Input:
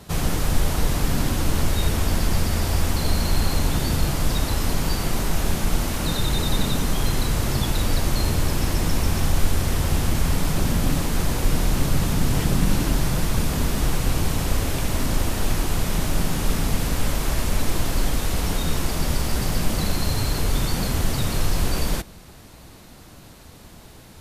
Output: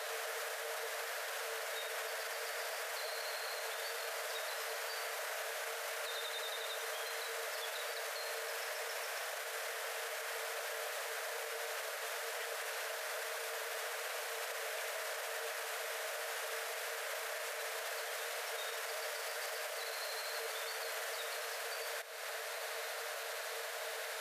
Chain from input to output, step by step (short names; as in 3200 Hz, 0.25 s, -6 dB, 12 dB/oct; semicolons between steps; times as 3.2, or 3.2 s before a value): compressor 4:1, threshold -35 dBFS, peak gain reduction 20 dB; rippled Chebyshev high-pass 440 Hz, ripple 9 dB; limiter -46 dBFS, peak gain reduction 11.5 dB; gain +14 dB